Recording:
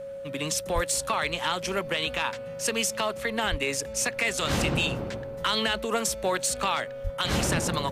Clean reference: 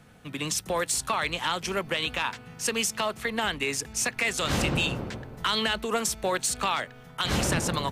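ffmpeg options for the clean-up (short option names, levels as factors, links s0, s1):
-filter_complex "[0:a]bandreject=f=550:w=30,asplit=3[s0][s1][s2];[s0]afade=t=out:st=0.74:d=0.02[s3];[s1]highpass=f=140:w=0.5412,highpass=f=140:w=1.3066,afade=t=in:st=0.74:d=0.02,afade=t=out:st=0.86:d=0.02[s4];[s2]afade=t=in:st=0.86:d=0.02[s5];[s3][s4][s5]amix=inputs=3:normalize=0,asplit=3[s6][s7][s8];[s6]afade=t=out:st=3.5:d=0.02[s9];[s7]highpass=f=140:w=0.5412,highpass=f=140:w=1.3066,afade=t=in:st=3.5:d=0.02,afade=t=out:st=3.62:d=0.02[s10];[s8]afade=t=in:st=3.62:d=0.02[s11];[s9][s10][s11]amix=inputs=3:normalize=0,asplit=3[s12][s13][s14];[s12]afade=t=out:st=7.03:d=0.02[s15];[s13]highpass=f=140:w=0.5412,highpass=f=140:w=1.3066,afade=t=in:st=7.03:d=0.02,afade=t=out:st=7.15:d=0.02[s16];[s14]afade=t=in:st=7.15:d=0.02[s17];[s15][s16][s17]amix=inputs=3:normalize=0"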